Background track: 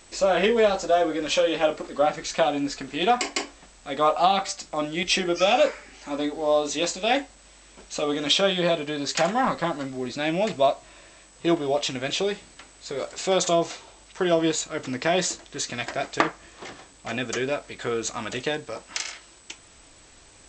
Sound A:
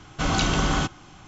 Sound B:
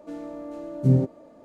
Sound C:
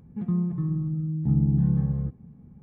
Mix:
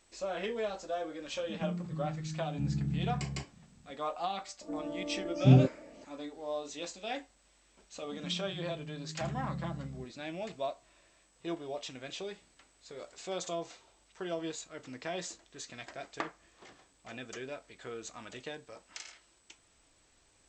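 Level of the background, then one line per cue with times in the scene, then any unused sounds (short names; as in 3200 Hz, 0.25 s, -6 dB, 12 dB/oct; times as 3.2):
background track -15.5 dB
1.33 add C -11.5 dB
4.61 add B -2 dB + LPF 1100 Hz
7.95 add C -17.5 dB
not used: A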